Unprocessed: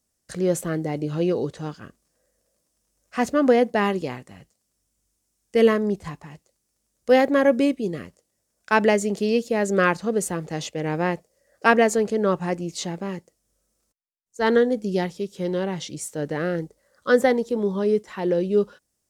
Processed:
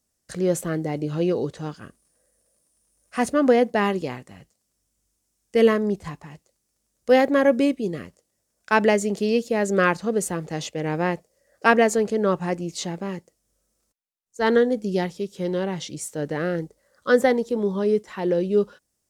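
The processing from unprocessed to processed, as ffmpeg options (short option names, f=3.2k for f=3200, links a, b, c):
-filter_complex "[0:a]asettb=1/sr,asplit=3[a][b][c];[a]atrim=end=1.764[d];[b]atrim=start=1.76:end=3.33,asetpts=PTS-STARTPTS,afade=t=in:d=0.004:c=qsin,afade=t=out:st=1.566:d=0.004:c=qsin,equalizer=f=9.5k:t=o:w=0.2:g=14[e];[c]atrim=start=3.326[f];[d][e]acrossfade=d=0.004:c1=hsin:c2=qsin[g];[g][f]acrossfade=d=0.004:c1=qsin:c2=hsin"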